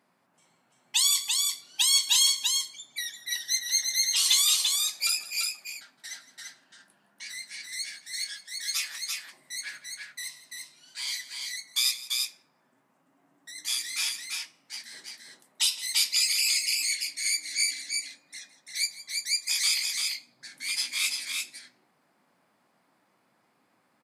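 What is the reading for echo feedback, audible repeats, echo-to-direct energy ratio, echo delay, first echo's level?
repeats not evenly spaced, 2, −3.5 dB, 164 ms, −17.0 dB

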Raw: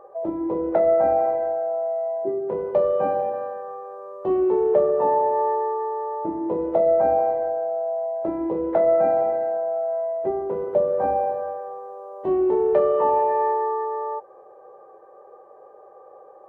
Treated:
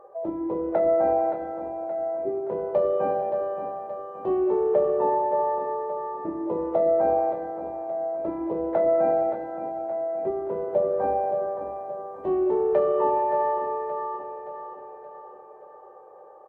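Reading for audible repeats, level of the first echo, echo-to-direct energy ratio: 5, −8.5 dB, −7.0 dB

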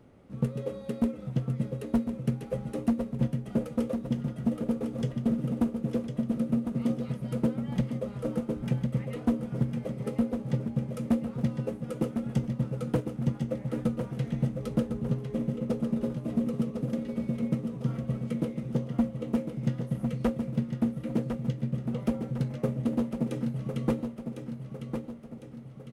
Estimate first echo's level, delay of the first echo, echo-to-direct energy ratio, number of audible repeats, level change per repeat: −7.0 dB, 1,054 ms, −6.0 dB, 5, −6.5 dB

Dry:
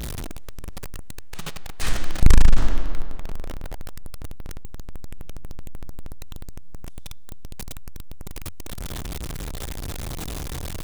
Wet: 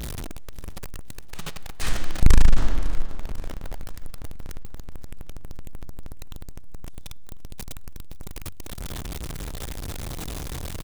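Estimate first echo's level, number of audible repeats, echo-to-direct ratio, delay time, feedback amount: −18.0 dB, 4, −16.5 dB, 523 ms, 55%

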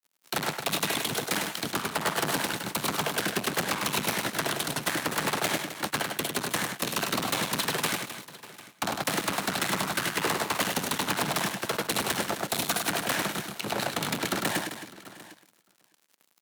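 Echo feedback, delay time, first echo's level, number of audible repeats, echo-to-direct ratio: repeats not evenly spaced, 102 ms, −5.0 dB, 6, −4.0 dB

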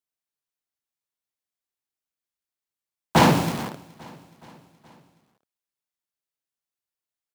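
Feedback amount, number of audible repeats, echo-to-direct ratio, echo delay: 58%, 3, −21.5 dB, 422 ms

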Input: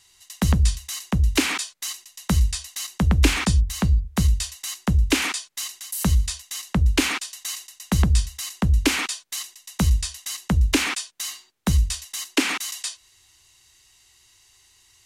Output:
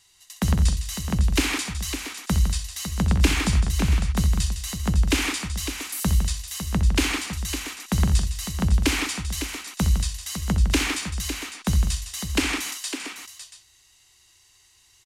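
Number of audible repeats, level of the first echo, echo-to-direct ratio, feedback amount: 5, −11.0 dB, −4.5 dB, repeats not evenly spaced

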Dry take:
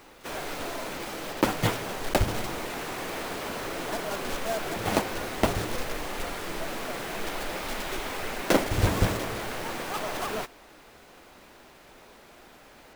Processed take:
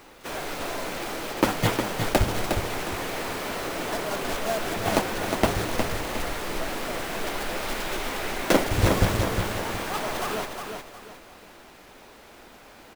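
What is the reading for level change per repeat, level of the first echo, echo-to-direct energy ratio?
−10.0 dB, −6.0 dB, −5.5 dB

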